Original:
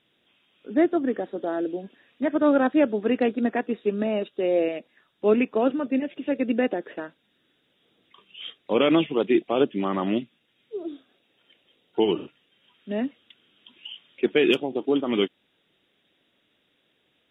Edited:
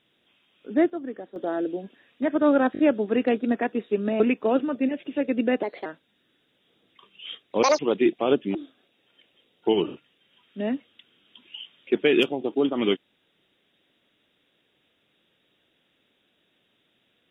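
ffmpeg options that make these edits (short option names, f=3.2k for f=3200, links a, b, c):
-filter_complex "[0:a]asplit=12[a][b][c][d][e][f][g][h][i][j][k][l];[a]atrim=end=0.9,asetpts=PTS-STARTPTS,afade=t=out:st=0.75:d=0.15:c=log:silence=0.354813[m];[b]atrim=start=0.9:end=1.36,asetpts=PTS-STARTPTS,volume=-9dB[n];[c]atrim=start=1.36:end=2.752,asetpts=PTS-STARTPTS,afade=t=in:d=0.15:c=log:silence=0.354813[o];[d]atrim=start=2.728:end=2.752[p];[e]atrim=start=2.728:end=2.752[q];[f]atrim=start=2.728:end=4.142[r];[g]atrim=start=5.308:end=6.744[s];[h]atrim=start=6.74:end=7.01,asetpts=PTS-STARTPTS,asetrate=52479,aresample=44100[t];[i]atrim=start=7.006:end=8.784[u];[j]atrim=start=8.78:end=9.08,asetpts=PTS-STARTPTS,asetrate=81585,aresample=44100,atrim=end_sample=7151,asetpts=PTS-STARTPTS[v];[k]atrim=start=9.076:end=9.842[w];[l]atrim=start=10.858[x];[m][n][o]concat=n=3:v=0:a=1[y];[y][p]acrossfade=d=0.004:c1=hsin:c2=hsin[z];[z][q]acrossfade=d=0.004:c1=hsin:c2=hsin[aa];[aa][r]acrossfade=d=0.004:c1=hsin:c2=hsin[ab];[ab][s]acrossfade=d=0.004:c1=hsin:c2=hsin[ac];[ac][t]acrossfade=d=0.004:c1=hsin:c2=hsin[ad];[ad][u]acrossfade=d=0.004:c1=hsin:c2=hsin[ae];[ae][v]acrossfade=d=0.004:c1=hsin:c2=hsin[af];[af][w]acrossfade=d=0.004:c1=hsin:c2=hsin[ag];[ag][x]acrossfade=d=0.004:c1=hsin:c2=hsin"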